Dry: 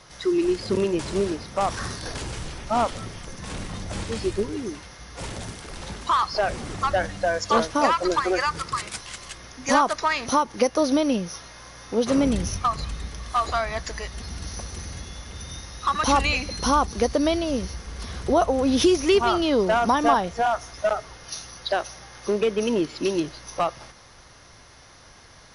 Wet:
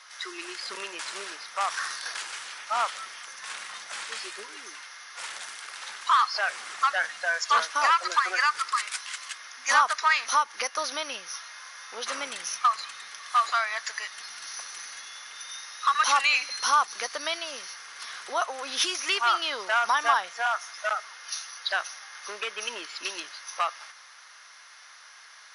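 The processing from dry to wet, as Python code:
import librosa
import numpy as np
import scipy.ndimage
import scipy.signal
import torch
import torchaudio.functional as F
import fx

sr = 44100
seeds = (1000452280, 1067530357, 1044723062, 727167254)

y = fx.highpass_res(x, sr, hz=1400.0, q=1.5)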